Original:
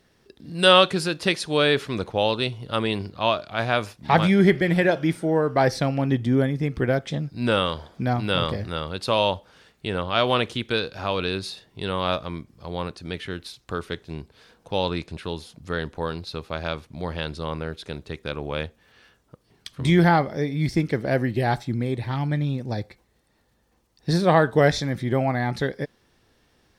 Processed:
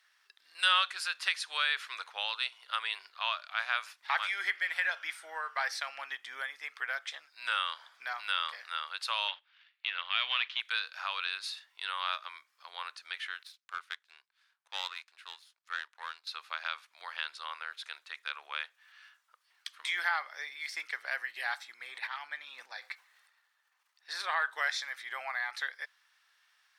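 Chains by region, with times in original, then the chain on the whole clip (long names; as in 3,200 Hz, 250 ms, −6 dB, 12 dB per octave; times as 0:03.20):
0:09.28–0:10.61: flat-topped bell 650 Hz −11 dB 2.9 octaves + leveller curve on the samples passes 2 + low-pass filter 3,600 Hz 24 dB per octave
0:13.43–0:16.27: high-pass filter 280 Hz 24 dB per octave + power curve on the samples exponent 1.4
0:21.86–0:24.46: bass and treble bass +3 dB, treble −4 dB + transient designer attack −4 dB, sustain +10 dB
whole clip: high-pass filter 1,300 Hz 24 dB per octave; high-shelf EQ 2,100 Hz −9.5 dB; downward compressor 1.5 to 1, threshold −37 dBFS; level +4 dB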